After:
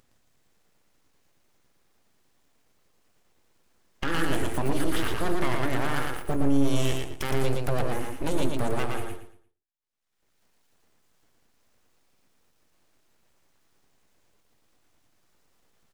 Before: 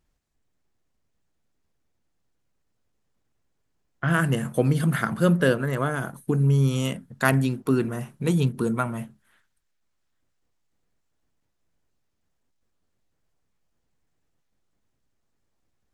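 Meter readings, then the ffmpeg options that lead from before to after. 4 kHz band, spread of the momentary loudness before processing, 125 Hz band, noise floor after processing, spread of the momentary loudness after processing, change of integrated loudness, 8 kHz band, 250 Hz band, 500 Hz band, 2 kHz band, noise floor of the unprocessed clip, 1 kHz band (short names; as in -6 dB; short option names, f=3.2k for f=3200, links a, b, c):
+2.0 dB, 10 LU, -9.0 dB, -70 dBFS, 7 LU, -5.0 dB, 0.0 dB, -4.5 dB, -3.5 dB, -5.0 dB, -74 dBFS, -1.0 dB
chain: -filter_complex "[0:a]agate=range=-44dB:threshold=-52dB:ratio=16:detection=peak,highpass=f=60:p=1,asplit=2[a][b];[b]acompressor=threshold=-31dB:ratio=6,volume=0dB[c];[a][c]amix=inputs=2:normalize=0,alimiter=limit=-14dB:level=0:latency=1:release=16,acompressor=mode=upward:threshold=-27dB:ratio=2.5,aeval=exprs='abs(val(0))':c=same,asplit=2[d][e];[e]aecho=0:1:115|230|345|460:0.668|0.174|0.0452|0.0117[f];[d][f]amix=inputs=2:normalize=0,volume=-2dB"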